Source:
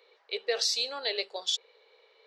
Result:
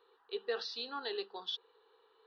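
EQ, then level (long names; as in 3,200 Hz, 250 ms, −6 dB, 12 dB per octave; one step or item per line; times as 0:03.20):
head-to-tape spacing loss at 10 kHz 41 dB
low-shelf EQ 160 Hz +8.5 dB
phaser with its sweep stopped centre 2,200 Hz, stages 6
+5.5 dB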